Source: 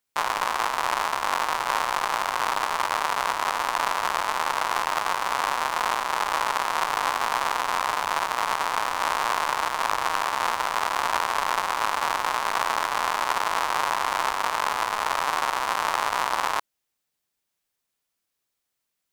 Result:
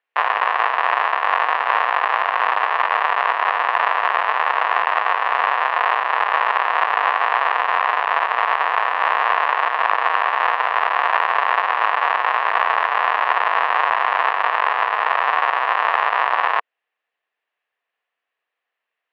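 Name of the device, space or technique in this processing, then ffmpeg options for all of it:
phone earpiece: -af "highpass=460,equalizer=f=470:t=q:w=4:g=7,equalizer=f=710:t=q:w=4:g=7,equalizer=f=1100:t=q:w=4:g=6,equalizer=f=1800:t=q:w=4:g=10,equalizer=f=2700:t=q:w=4:g=6,lowpass=f=3100:w=0.5412,lowpass=f=3100:w=1.3066,volume=1.19"

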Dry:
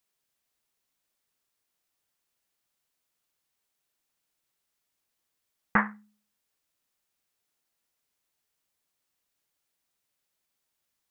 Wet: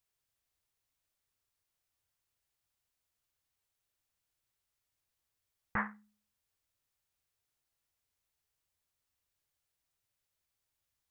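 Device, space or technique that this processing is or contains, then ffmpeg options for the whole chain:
car stereo with a boomy subwoofer: -af "lowshelf=f=140:t=q:w=1.5:g=9,alimiter=limit=0.141:level=0:latency=1:release=18,volume=0.562"

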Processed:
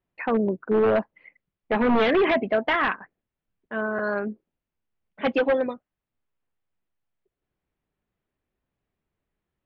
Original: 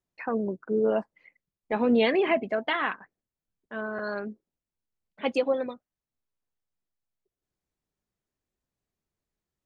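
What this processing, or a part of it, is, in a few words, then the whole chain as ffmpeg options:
synthesiser wavefolder: -af "aeval=exprs='0.0944*(abs(mod(val(0)/0.0944+3,4)-2)-1)':c=same,lowpass=f=3100:w=0.5412,lowpass=f=3100:w=1.3066,volume=2"

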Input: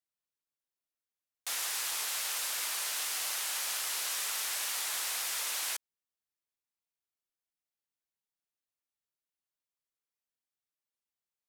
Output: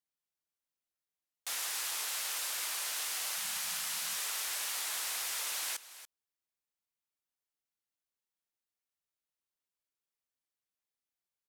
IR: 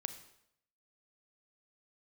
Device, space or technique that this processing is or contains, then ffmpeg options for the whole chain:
ducked delay: -filter_complex "[0:a]asplit=3[s0][s1][s2];[s1]adelay=285,volume=0.376[s3];[s2]apad=whole_len=519086[s4];[s3][s4]sidechaincompress=threshold=0.0112:ratio=5:attack=11:release=1030[s5];[s0][s5]amix=inputs=2:normalize=0,asettb=1/sr,asplit=3[s6][s7][s8];[s6]atrim=end=3.374[s9];[s7]atrim=start=3.37:end=4.16,asetpts=PTS-STARTPTS,afade=t=in:d=0.004:c=qsin,afade=t=out:st=0.786:d=0.004:c=qsin,lowshelf=f=250:t=q:w=3:g=12.5[s10];[s8]atrim=start=4.156[s11];[s9][s10]acrossfade=d=0.004:c1=hsin:c2=qsin[s12];[s12][s11]acrossfade=d=0.004:c1=qsin:c2=hsin,volume=0.794"

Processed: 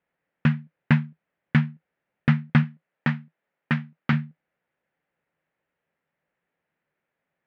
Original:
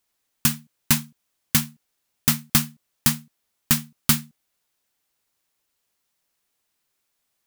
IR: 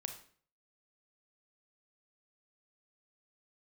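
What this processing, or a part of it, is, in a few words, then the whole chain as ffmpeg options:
bass cabinet: -filter_complex "[0:a]asettb=1/sr,asplit=3[s0][s1][s2];[s0]atrim=end=2.634[s3];[s1]atrim=start=2.63:end=4.13,asetpts=PTS-STARTPTS,afade=t=in:d=0.004:c=qsin,afade=t=out:st=1.496:d=0.004:c=qsin,highpass=f=250:p=1[s4];[s2]atrim=start=4.126[s5];[s3][s4]acrossfade=d=0.004:c1=hsin:c2=qsin[s6];[s6][s5]acrossfade=d=0.004:c1=qsin:c2=hsin,highpass=62,equalizer=f=96:t=q:w=4:g=-7,equalizer=f=160:t=q:w=4:g=9,equalizer=f=540:t=q:w=4:g=6,equalizer=f=1100:t=q:w=4:g=-5,equalizer=f=1800:t=q:w=4:g=3,lowpass=f=2200:w=0.5412,lowpass=f=2200:w=1.3066,volume=1.26"

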